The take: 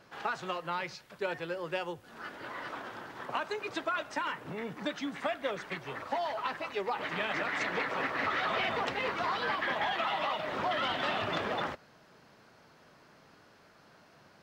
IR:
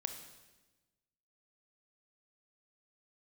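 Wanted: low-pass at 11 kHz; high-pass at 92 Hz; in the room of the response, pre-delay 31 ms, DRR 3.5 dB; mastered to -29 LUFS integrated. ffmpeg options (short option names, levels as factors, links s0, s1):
-filter_complex "[0:a]highpass=92,lowpass=11000,asplit=2[s0][s1];[1:a]atrim=start_sample=2205,adelay=31[s2];[s1][s2]afir=irnorm=-1:irlink=0,volume=0.708[s3];[s0][s3]amix=inputs=2:normalize=0,volume=1.5"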